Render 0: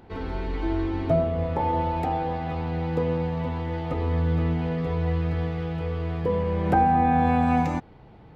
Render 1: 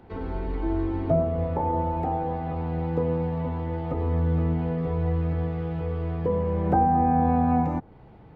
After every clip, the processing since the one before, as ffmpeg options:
-filter_complex "[0:a]highshelf=f=3.6k:g=-9.5,acrossover=split=110|1300[a][b][c];[c]acompressor=threshold=-52dB:ratio=6[d];[a][b][d]amix=inputs=3:normalize=0"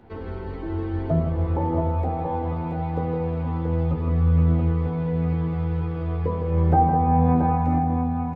-filter_complex "[0:a]flanger=delay=8.7:depth=4.6:regen=53:speed=0.36:shape=triangular,asplit=2[a][b];[b]adelay=13,volume=-8dB[c];[a][c]amix=inputs=2:normalize=0,asplit=2[d][e];[e]aecho=0:1:160|677:0.422|0.531[f];[d][f]amix=inputs=2:normalize=0,volume=3.5dB"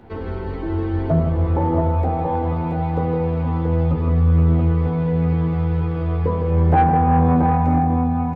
-af "asoftclip=type=tanh:threshold=-13.5dB,volume=5.5dB"

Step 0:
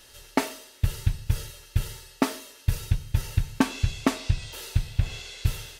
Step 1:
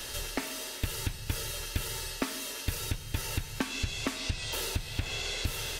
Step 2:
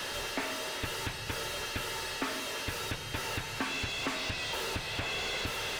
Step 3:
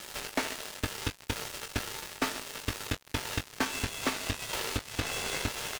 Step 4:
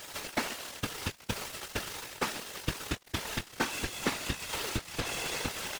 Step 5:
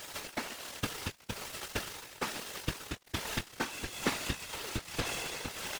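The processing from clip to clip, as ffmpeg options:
-filter_complex "[0:a]asplit=2[a][b];[b]acompressor=threshold=-30dB:ratio=6,volume=2.5dB[c];[a][c]amix=inputs=2:normalize=0,alimiter=limit=-13dB:level=0:latency=1:release=369,acrossover=split=250|1200[d][e][f];[d]acompressor=threshold=-37dB:ratio=4[g];[e]acompressor=threshold=-45dB:ratio=4[h];[f]acompressor=threshold=-39dB:ratio=4[i];[g][h][i]amix=inputs=3:normalize=0,volume=5dB"
-filter_complex "[0:a]asplit=2[a][b];[b]highpass=f=720:p=1,volume=28dB,asoftclip=type=tanh:threshold=-15dB[c];[a][c]amix=inputs=2:normalize=0,lowpass=f=1.5k:p=1,volume=-6dB,volume=-6dB"
-filter_complex "[0:a]acrusher=bits=4:mix=0:aa=0.5,asplit=2[a][b];[b]adelay=20,volume=-8dB[c];[a][c]amix=inputs=2:normalize=0,aeval=exprs='sgn(val(0))*max(abs(val(0))-0.00251,0)':c=same,volume=4dB"
-af "afftfilt=real='hypot(re,im)*cos(2*PI*random(0))':imag='hypot(re,im)*sin(2*PI*random(1))':win_size=512:overlap=0.75,volume=5dB"
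-af "tremolo=f=1.2:d=0.48"

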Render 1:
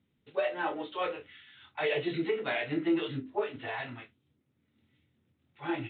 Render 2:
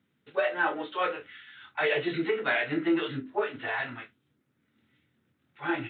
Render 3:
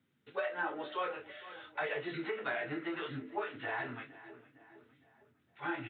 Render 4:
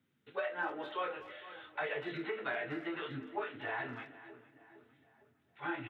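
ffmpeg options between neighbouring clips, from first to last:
-af "highpass=120,equalizer=f=1.5k:w=1.9:g=8,volume=2dB"
-filter_complex "[0:a]asplit=2[a][b];[b]adelay=459,lowpass=f=2.4k:p=1,volume=-19dB,asplit=2[c][d];[d]adelay=459,lowpass=f=2.4k:p=1,volume=0.52,asplit=2[e][f];[f]adelay=459,lowpass=f=2.4k:p=1,volume=0.52,asplit=2[g][h];[h]adelay=459,lowpass=f=2.4k:p=1,volume=0.52[i];[a][c][e][g][i]amix=inputs=5:normalize=0,flanger=delay=7.4:depth=2.7:regen=-56:speed=0.99:shape=sinusoidal,acrossover=split=780|1700[j][k][l];[j]acompressor=threshold=-40dB:ratio=4[m];[k]acompressor=threshold=-39dB:ratio=4[n];[l]acompressor=threshold=-49dB:ratio=4[o];[m][n][o]amix=inputs=3:normalize=0,volume=1dB"
-filter_complex "[0:a]asplit=2[a][b];[b]adelay=240,highpass=300,lowpass=3.4k,asoftclip=type=hard:threshold=-31.5dB,volume=-16dB[c];[a][c]amix=inputs=2:normalize=0,volume=-1dB"

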